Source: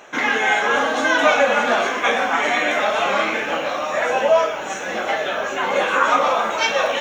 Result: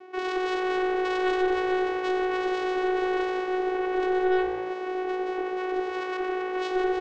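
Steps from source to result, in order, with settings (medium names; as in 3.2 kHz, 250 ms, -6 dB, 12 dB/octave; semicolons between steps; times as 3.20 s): self-modulated delay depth 0.44 ms; bass shelf 330 Hz +11.5 dB; 4.41–6.55 s: compression 2.5:1, threshold -22 dBFS, peak gain reduction 7 dB; vocoder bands 4, saw 370 Hz; saturation -15.5 dBFS, distortion -12 dB; distance through air 150 m; frequency-shifting echo 90 ms, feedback 50%, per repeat +57 Hz, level -14.5 dB; trim -3.5 dB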